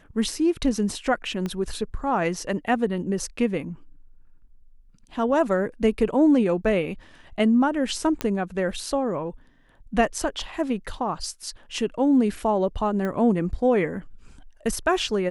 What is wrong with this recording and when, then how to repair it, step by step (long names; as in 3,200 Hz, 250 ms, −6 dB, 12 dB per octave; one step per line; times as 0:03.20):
0:01.46: click −17 dBFS
0:08.21: click −10 dBFS
0:13.05: click −18 dBFS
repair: click removal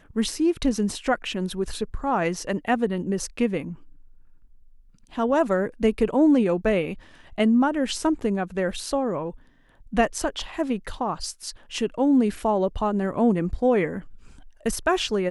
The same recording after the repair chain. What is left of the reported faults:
0:01.46: click